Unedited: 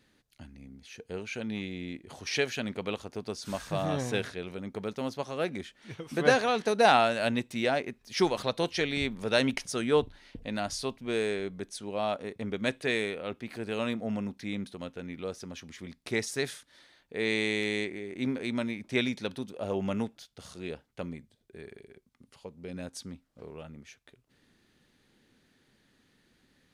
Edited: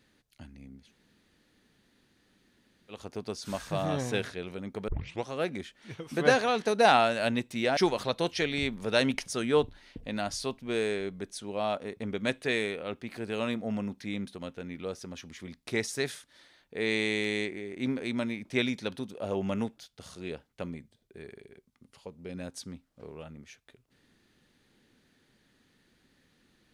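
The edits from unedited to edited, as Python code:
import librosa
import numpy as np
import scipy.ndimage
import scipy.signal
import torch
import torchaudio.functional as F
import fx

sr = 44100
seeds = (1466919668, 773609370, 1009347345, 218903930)

y = fx.edit(x, sr, fx.room_tone_fill(start_s=0.84, length_s=2.12, crossfade_s=0.16),
    fx.tape_start(start_s=4.88, length_s=0.38),
    fx.cut(start_s=7.77, length_s=0.39), tone=tone)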